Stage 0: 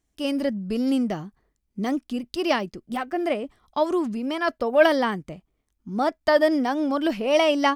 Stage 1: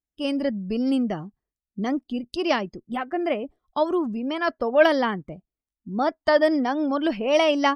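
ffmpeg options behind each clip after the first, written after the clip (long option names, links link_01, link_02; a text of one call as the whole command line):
ffmpeg -i in.wav -af "afftdn=noise_reduction=20:noise_floor=-45" out.wav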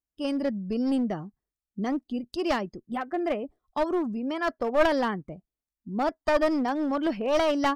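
ffmpeg -i in.wav -af "equalizer=frequency=2900:width_type=o:width=0.85:gain=-4.5,aeval=exprs='clip(val(0),-1,0.0841)':channel_layout=same,volume=-2.5dB" out.wav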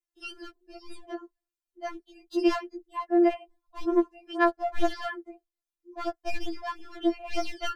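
ffmpeg -i in.wav -af "afftfilt=real='re*4*eq(mod(b,16),0)':imag='im*4*eq(mod(b,16),0)':win_size=2048:overlap=0.75" out.wav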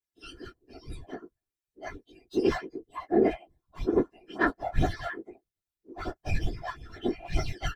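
ffmpeg -i in.wav -filter_complex "[0:a]asplit=2[link_01][link_02];[link_02]adelay=14,volume=-5dB[link_03];[link_01][link_03]amix=inputs=2:normalize=0,afftfilt=real='hypot(re,im)*cos(2*PI*random(0))':imag='hypot(re,im)*sin(2*PI*random(1))':win_size=512:overlap=0.75,volume=3dB" out.wav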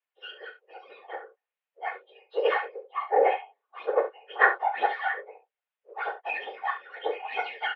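ffmpeg -i in.wav -af "aecho=1:1:40|70:0.299|0.224,highpass=frequency=460:width_type=q:width=0.5412,highpass=frequency=460:width_type=q:width=1.307,lowpass=frequency=3000:width_type=q:width=0.5176,lowpass=frequency=3000:width_type=q:width=0.7071,lowpass=frequency=3000:width_type=q:width=1.932,afreqshift=88,volume=7dB" out.wav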